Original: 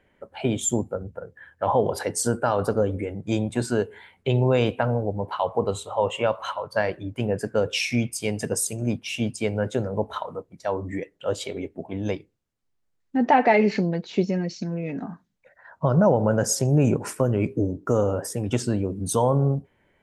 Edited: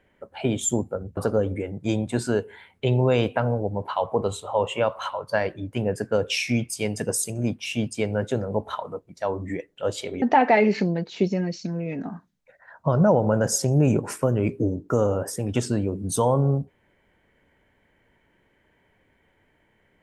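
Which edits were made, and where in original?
1.17–2.6 cut
11.65–13.19 cut

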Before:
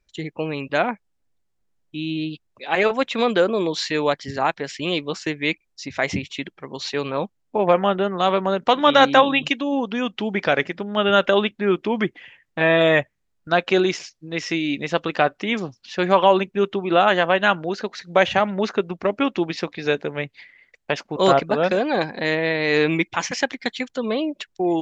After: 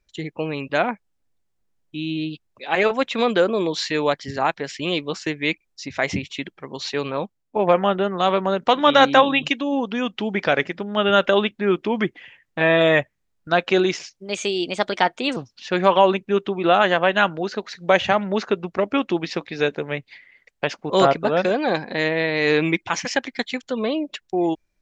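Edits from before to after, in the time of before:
7.07–7.56 fade out, to -7.5 dB
14.16–15.63 speed 122%

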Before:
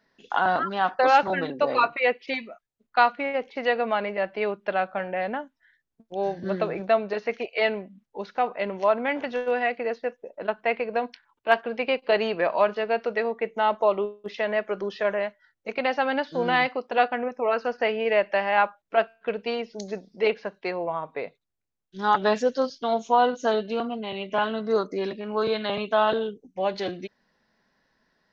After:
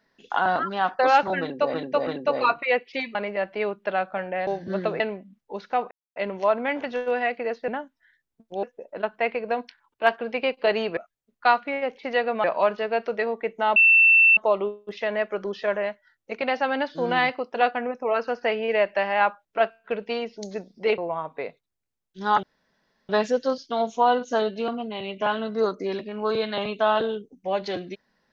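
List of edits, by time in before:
1.41–1.74 loop, 3 plays
2.49–3.96 move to 12.42
5.28–6.23 move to 10.08
6.76–7.65 cut
8.56 insert silence 0.25 s
13.74 add tone 2680 Hz -12 dBFS 0.61 s
20.35–20.76 cut
22.21 insert room tone 0.66 s

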